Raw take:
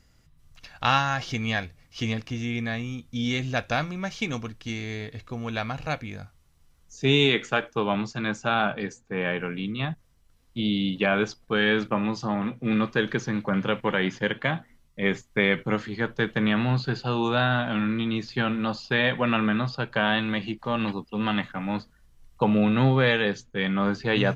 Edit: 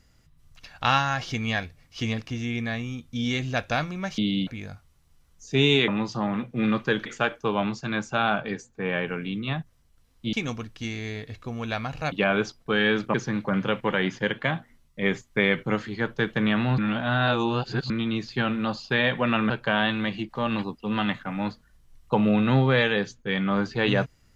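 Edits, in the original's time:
0:04.18–0:05.97: swap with 0:10.65–0:10.94
0:11.96–0:13.14: move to 0:07.38
0:16.78–0:17.90: reverse
0:19.50–0:19.79: remove

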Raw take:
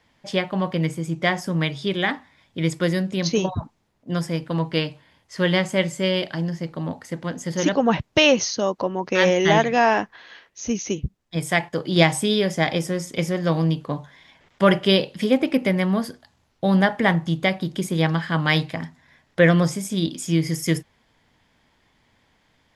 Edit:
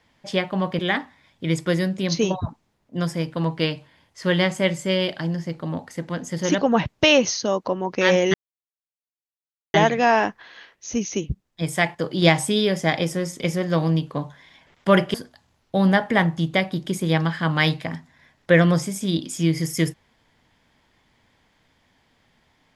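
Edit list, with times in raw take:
0:00.79–0:01.93: remove
0:09.48: splice in silence 1.40 s
0:14.88–0:16.03: remove

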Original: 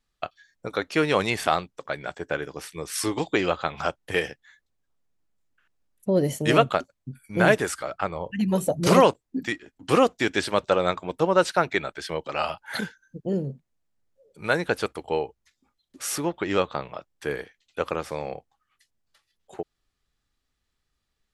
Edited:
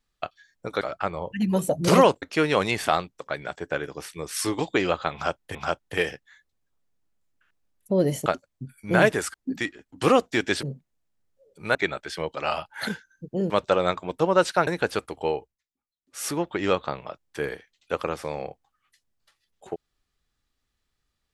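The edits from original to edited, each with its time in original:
0:03.72–0:04.14: repeat, 2 plays
0:06.43–0:06.72: remove
0:07.80–0:09.21: move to 0:00.81
0:10.50–0:11.67: swap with 0:13.42–0:14.54
0:15.25–0:16.16: duck −21.5 dB, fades 0.20 s

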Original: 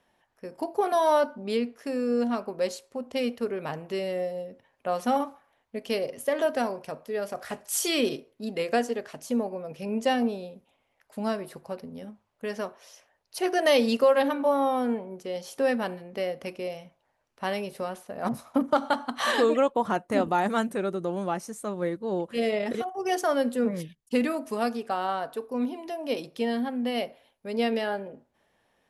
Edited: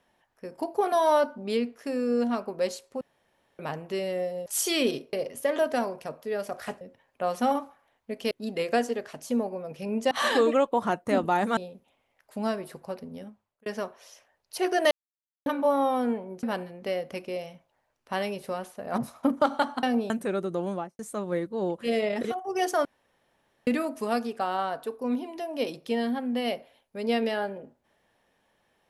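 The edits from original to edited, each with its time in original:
0:03.01–0:03.59: fill with room tone
0:04.46–0:05.96: swap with 0:07.64–0:08.31
0:10.11–0:10.38: swap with 0:19.14–0:20.60
0:11.99–0:12.47: fade out
0:13.72–0:14.27: silence
0:15.24–0:15.74: remove
0:21.18–0:21.49: fade out and dull
0:23.35–0:24.17: fill with room tone

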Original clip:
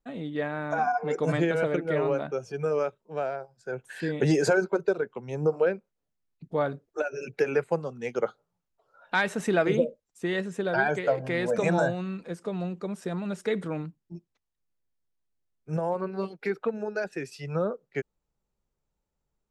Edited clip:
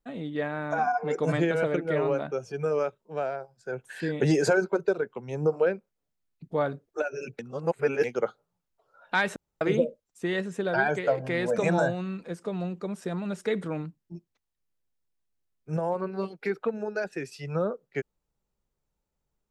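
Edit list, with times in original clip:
0:07.39–0:08.04: reverse
0:09.36–0:09.61: fill with room tone

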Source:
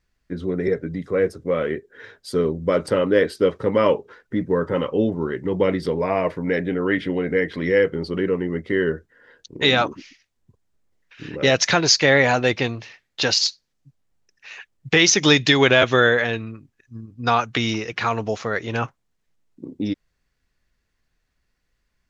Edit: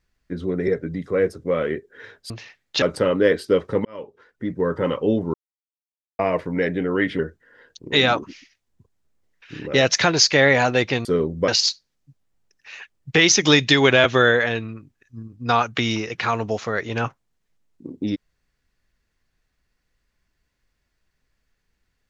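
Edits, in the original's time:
0:02.30–0:02.73: swap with 0:12.74–0:13.26
0:03.76–0:04.70: fade in
0:05.25–0:06.10: silence
0:07.10–0:08.88: remove

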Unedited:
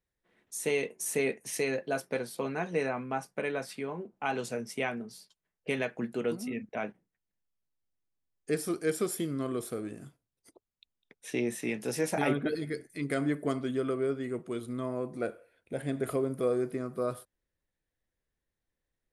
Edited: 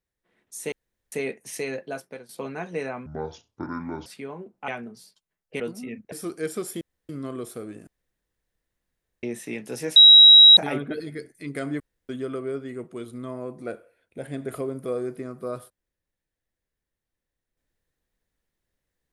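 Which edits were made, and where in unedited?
0:00.72–0:01.12: fill with room tone
0:01.83–0:02.29: fade out, to −14.5 dB
0:03.06–0:03.65: play speed 59%
0:04.27–0:04.82: remove
0:05.74–0:06.24: remove
0:06.76–0:08.56: remove
0:09.25: splice in room tone 0.28 s
0:10.03–0:11.39: fill with room tone
0:12.12: insert tone 3,850 Hz −7 dBFS 0.61 s
0:13.35–0:13.64: fill with room tone

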